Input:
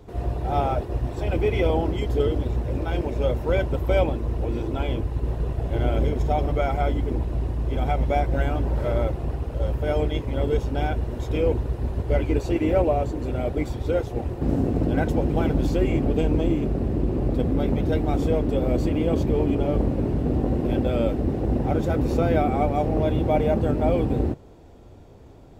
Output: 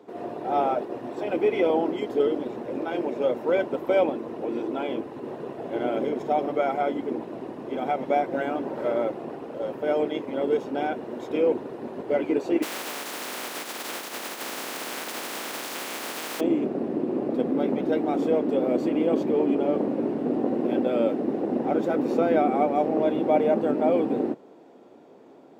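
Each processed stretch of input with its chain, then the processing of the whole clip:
0:12.62–0:16.39: compressing power law on the bin magnitudes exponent 0.11 + downward compressor 12 to 1, threshold −25 dBFS
whole clip: high-pass filter 230 Hz 24 dB per octave; high-shelf EQ 3,400 Hz −10.5 dB; level +1.5 dB

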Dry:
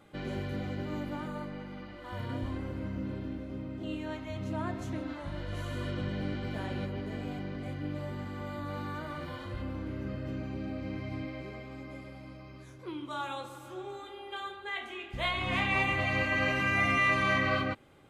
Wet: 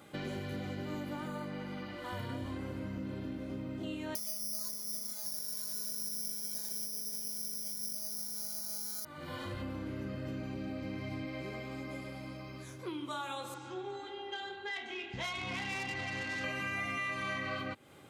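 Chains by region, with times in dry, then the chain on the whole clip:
0:04.15–0:09.05: phases set to zero 210 Hz + bad sample-rate conversion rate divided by 8×, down filtered, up zero stuff
0:13.54–0:16.44: low-pass filter 6,100 Hz 24 dB per octave + notch comb filter 600 Hz + tube saturation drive 28 dB, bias 0.4
whole clip: high-pass filter 92 Hz; high-shelf EQ 4,800 Hz +8.5 dB; downward compressor 4 to 1, threshold −40 dBFS; level +3 dB

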